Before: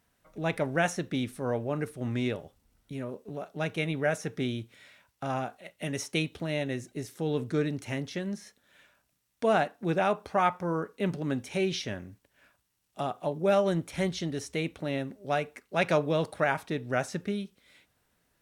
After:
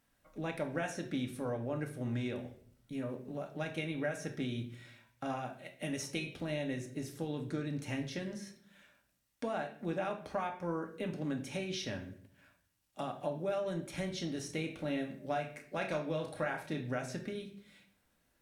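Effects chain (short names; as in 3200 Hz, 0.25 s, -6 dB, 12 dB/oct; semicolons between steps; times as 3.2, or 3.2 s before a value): compressor 6:1, threshold -30 dBFS, peak gain reduction 10.5 dB; 14.45–16.93 doubler 32 ms -7 dB; reverb RT60 0.55 s, pre-delay 4 ms, DRR 3 dB; gain -4.5 dB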